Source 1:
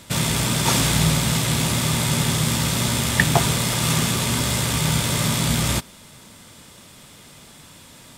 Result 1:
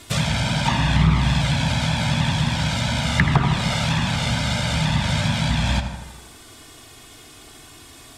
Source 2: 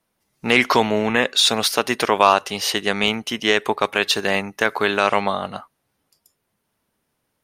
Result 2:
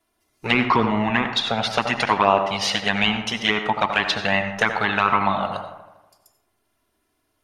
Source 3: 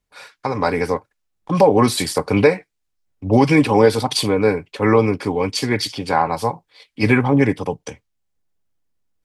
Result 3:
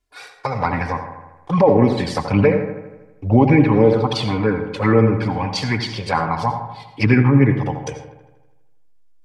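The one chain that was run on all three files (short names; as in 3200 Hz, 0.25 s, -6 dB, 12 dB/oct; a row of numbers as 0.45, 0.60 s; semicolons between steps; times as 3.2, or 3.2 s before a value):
treble ducked by the level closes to 1700 Hz, closed at -13 dBFS; dynamic EQ 420 Hz, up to -4 dB, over -28 dBFS, Q 0.7; envelope flanger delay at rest 2.9 ms, full sweep at -10.5 dBFS; on a send: dark delay 80 ms, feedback 61%, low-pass 1600 Hz, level -8.5 dB; on the sum: digital reverb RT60 0.58 s, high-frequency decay 0.55×, pre-delay 50 ms, DRR 10.5 dB; maximiser +6 dB; gain -1.5 dB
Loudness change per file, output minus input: -1.0, -2.0, 0.0 LU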